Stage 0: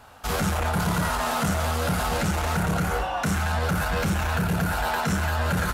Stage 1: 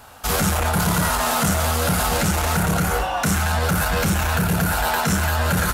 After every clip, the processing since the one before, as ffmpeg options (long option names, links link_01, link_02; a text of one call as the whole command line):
ffmpeg -i in.wav -af "highshelf=frequency=6100:gain=9,volume=4dB" out.wav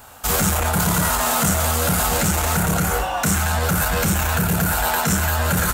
ffmpeg -i in.wav -af "aexciter=amount=1.6:drive=6:freq=6800" out.wav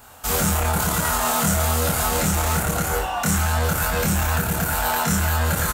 ffmpeg -i in.wav -filter_complex "[0:a]asplit=2[link_01][link_02];[link_02]adelay=25,volume=-3dB[link_03];[link_01][link_03]amix=inputs=2:normalize=0,volume=-4dB" out.wav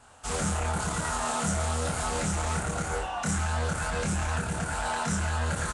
ffmpeg -i in.wav -af "volume=-7.5dB" -ar 22050 -c:a nellymoser out.flv